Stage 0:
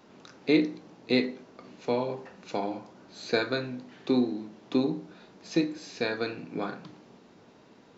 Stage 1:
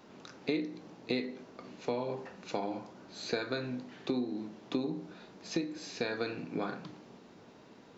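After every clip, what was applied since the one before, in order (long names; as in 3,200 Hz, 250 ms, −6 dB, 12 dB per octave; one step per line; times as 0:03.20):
downward compressor 5 to 1, threshold −30 dBFS, peak gain reduction 12 dB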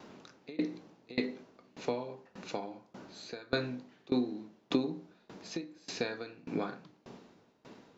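tremolo with a ramp in dB decaying 1.7 Hz, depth 24 dB
level +6 dB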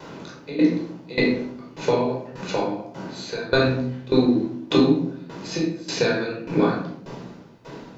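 rectangular room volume 940 cubic metres, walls furnished, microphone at 4.9 metres
level +8 dB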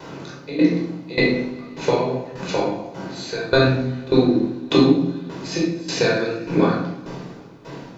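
coupled-rooms reverb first 0.49 s, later 3.5 s, from −20 dB, DRR 6 dB
level +2 dB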